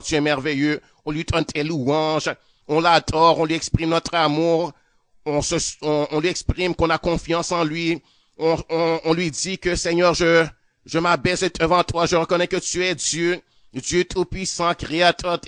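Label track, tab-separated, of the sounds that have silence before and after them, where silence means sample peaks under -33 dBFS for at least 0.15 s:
1.070000	2.330000	sound
2.690000	4.700000	sound
5.270000	7.980000	sound
8.400000	10.490000	sound
10.870000	13.390000	sound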